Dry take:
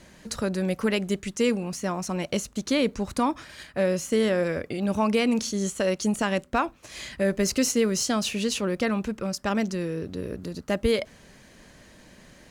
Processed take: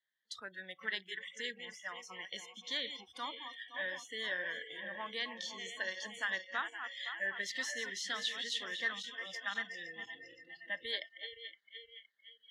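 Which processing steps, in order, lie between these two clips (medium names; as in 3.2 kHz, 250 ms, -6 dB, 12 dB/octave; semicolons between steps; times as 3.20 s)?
backward echo that repeats 258 ms, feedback 77%, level -8 dB; spectral noise reduction 29 dB; two resonant band-passes 2.5 kHz, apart 0.88 oct; trim +1.5 dB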